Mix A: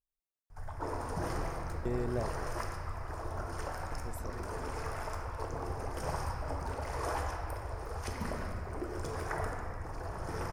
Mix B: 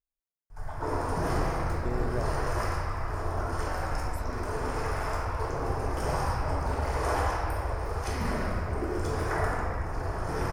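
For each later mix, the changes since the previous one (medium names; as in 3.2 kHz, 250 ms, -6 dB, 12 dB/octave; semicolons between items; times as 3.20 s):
background: send +10.0 dB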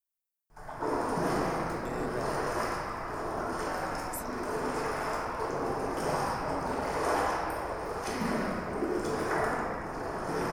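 speech: add tilt EQ +3.5 dB/octave; background: add resonant low shelf 130 Hz -13.5 dB, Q 1.5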